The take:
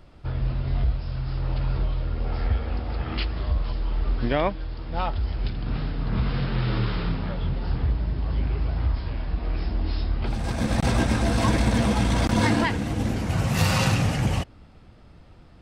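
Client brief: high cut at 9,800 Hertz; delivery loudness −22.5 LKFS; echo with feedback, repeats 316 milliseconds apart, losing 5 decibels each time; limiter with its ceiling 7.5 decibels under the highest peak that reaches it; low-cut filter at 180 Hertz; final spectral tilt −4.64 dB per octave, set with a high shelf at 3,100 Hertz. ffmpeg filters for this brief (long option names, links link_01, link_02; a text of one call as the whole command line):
ffmpeg -i in.wav -af "highpass=180,lowpass=9800,highshelf=frequency=3100:gain=3.5,alimiter=limit=-16.5dB:level=0:latency=1,aecho=1:1:316|632|948|1264|1580|1896|2212:0.562|0.315|0.176|0.0988|0.0553|0.031|0.0173,volume=7dB" out.wav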